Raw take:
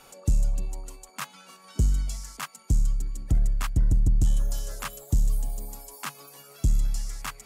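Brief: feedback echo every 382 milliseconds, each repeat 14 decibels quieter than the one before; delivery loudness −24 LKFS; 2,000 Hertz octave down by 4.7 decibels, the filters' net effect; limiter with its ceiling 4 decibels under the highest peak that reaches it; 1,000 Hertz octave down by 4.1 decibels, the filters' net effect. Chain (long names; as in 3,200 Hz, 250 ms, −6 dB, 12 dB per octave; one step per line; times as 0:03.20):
parametric band 1,000 Hz −3.5 dB
parametric band 2,000 Hz −5 dB
brickwall limiter −19.5 dBFS
repeating echo 382 ms, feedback 20%, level −14 dB
level +7.5 dB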